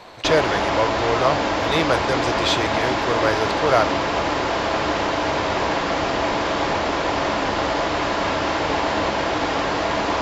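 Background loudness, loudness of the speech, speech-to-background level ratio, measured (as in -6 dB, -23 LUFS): -21.5 LUFS, -23.0 LUFS, -1.5 dB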